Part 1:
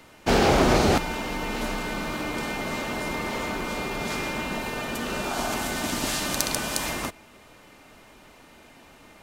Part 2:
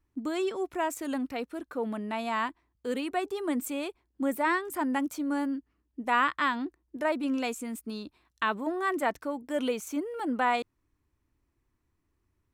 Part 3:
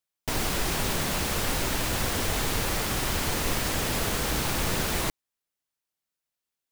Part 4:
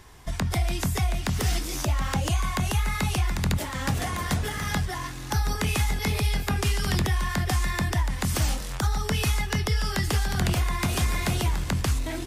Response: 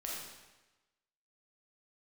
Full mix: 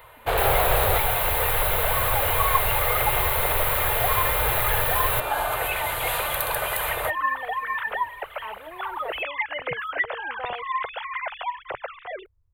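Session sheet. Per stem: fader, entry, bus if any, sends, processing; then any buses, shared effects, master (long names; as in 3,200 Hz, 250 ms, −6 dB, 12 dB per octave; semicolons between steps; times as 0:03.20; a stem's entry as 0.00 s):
+2.0 dB, 0.00 s, no send, hard clipping −20.5 dBFS, distortion −9 dB
−10.0 dB, 0.00 s, no send, spectral tilt −4.5 dB per octave
+2.5 dB, 0.10 s, no send, no processing
−5.5 dB, 0.00 s, no send, three sine waves on the formant tracks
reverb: not used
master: drawn EQ curve 120 Hz 0 dB, 240 Hz −29 dB, 480 Hz +1 dB, 1,200 Hz +1 dB, 3,900 Hz −4 dB, 5,500 Hz −24 dB, 12,000 Hz +8 dB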